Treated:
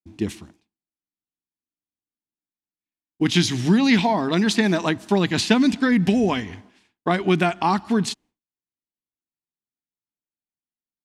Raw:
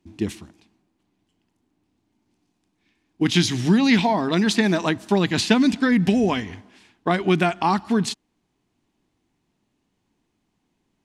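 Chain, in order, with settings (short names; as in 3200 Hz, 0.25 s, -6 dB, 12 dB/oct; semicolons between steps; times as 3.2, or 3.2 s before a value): expander -45 dBFS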